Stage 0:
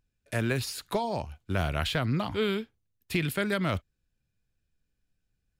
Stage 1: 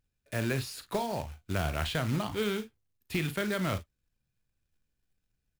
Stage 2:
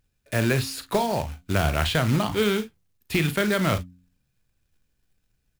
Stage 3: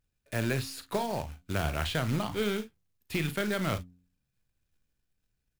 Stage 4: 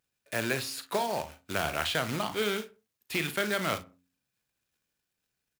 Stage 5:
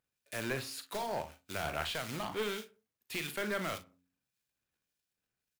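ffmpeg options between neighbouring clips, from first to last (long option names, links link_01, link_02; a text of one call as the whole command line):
ffmpeg -i in.wav -af "deesser=0.75,acrusher=bits=3:mode=log:mix=0:aa=0.000001,aecho=1:1:38|52:0.266|0.133,volume=-3dB" out.wav
ffmpeg -i in.wav -af "bandreject=frequency=89.49:width_type=h:width=4,bandreject=frequency=178.98:width_type=h:width=4,bandreject=frequency=268.47:width_type=h:width=4,volume=8.5dB" out.wav
ffmpeg -i in.wav -af "aeval=exprs='if(lt(val(0),0),0.708*val(0),val(0))':channel_layout=same,volume=-6.5dB" out.wav
ffmpeg -i in.wav -filter_complex "[0:a]highpass=frequency=480:poles=1,asplit=2[link_01][link_02];[link_02]adelay=63,lowpass=frequency=1500:poles=1,volume=-16.5dB,asplit=2[link_03][link_04];[link_04]adelay=63,lowpass=frequency=1500:poles=1,volume=0.39,asplit=2[link_05][link_06];[link_06]adelay=63,lowpass=frequency=1500:poles=1,volume=0.39[link_07];[link_01][link_03][link_05][link_07]amix=inputs=4:normalize=0,volume=4dB" out.wav
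ffmpeg -i in.wav -filter_complex "[0:a]aeval=exprs='clip(val(0),-1,0.0422)':channel_layout=same,acrossover=split=2400[link_01][link_02];[link_01]aeval=exprs='val(0)*(1-0.5/2+0.5/2*cos(2*PI*1.7*n/s))':channel_layout=same[link_03];[link_02]aeval=exprs='val(0)*(1-0.5/2-0.5/2*cos(2*PI*1.7*n/s))':channel_layout=same[link_04];[link_03][link_04]amix=inputs=2:normalize=0,volume=-3dB" out.wav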